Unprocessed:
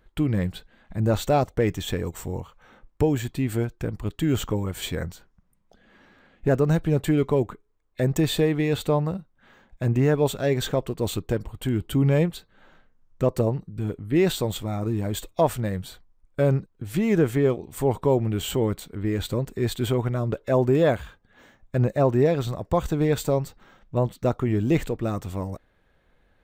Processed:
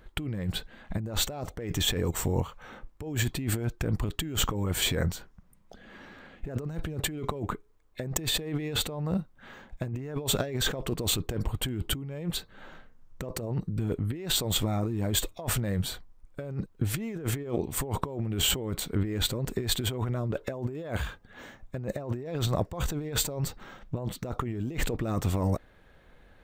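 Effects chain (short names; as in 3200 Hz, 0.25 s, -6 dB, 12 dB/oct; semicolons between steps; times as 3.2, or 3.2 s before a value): negative-ratio compressor -31 dBFS, ratio -1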